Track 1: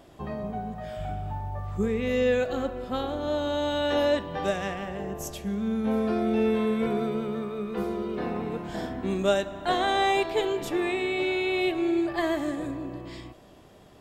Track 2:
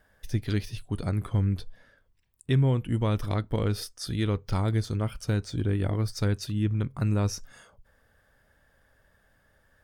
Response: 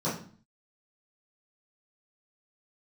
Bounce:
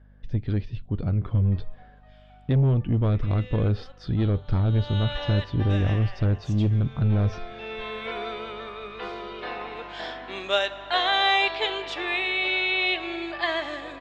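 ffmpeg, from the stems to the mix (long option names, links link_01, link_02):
-filter_complex "[0:a]highpass=680,crystalizer=i=9.5:c=0,adelay=1250,afade=type=in:start_time=4.7:duration=0.29:silence=0.298538,afade=type=in:start_time=7.58:duration=0.67:silence=0.354813[link_01];[1:a]lowshelf=frequency=440:gain=3,dynaudnorm=framelen=760:gausssize=3:maxgain=4dB,asoftclip=type=tanh:threshold=-17.5dB,volume=-2dB[link_02];[link_01][link_02]amix=inputs=2:normalize=0,lowpass=frequency=3800:width=0.5412,lowpass=frequency=3800:width=1.3066,tiltshelf=frequency=680:gain=3.5,aeval=exprs='val(0)+0.00251*(sin(2*PI*50*n/s)+sin(2*PI*2*50*n/s)/2+sin(2*PI*3*50*n/s)/3+sin(2*PI*4*50*n/s)/4+sin(2*PI*5*50*n/s)/5)':channel_layout=same"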